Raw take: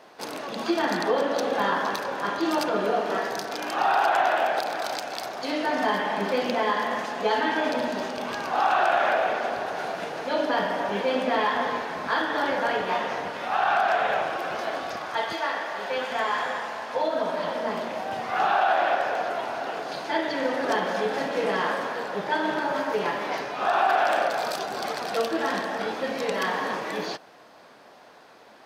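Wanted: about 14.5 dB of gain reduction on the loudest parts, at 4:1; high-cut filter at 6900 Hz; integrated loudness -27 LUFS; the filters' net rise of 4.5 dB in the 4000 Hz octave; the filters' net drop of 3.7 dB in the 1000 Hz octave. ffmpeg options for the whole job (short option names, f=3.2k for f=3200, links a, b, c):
-af "lowpass=6.9k,equalizer=f=1k:t=o:g=-5.5,equalizer=f=4k:t=o:g=6.5,acompressor=threshold=-39dB:ratio=4,volume=12.5dB"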